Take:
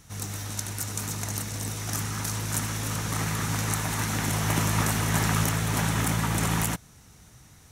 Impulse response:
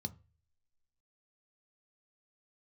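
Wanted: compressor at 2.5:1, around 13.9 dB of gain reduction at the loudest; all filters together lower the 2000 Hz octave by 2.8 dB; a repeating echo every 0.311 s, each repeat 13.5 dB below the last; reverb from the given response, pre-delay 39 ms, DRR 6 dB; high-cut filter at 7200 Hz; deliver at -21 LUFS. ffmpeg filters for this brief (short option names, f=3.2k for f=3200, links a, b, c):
-filter_complex "[0:a]lowpass=7.2k,equalizer=f=2k:t=o:g=-3.5,acompressor=threshold=-43dB:ratio=2.5,aecho=1:1:311|622:0.211|0.0444,asplit=2[a][b];[1:a]atrim=start_sample=2205,adelay=39[c];[b][c]afir=irnorm=-1:irlink=0,volume=-3.5dB[d];[a][d]amix=inputs=2:normalize=0,volume=12dB"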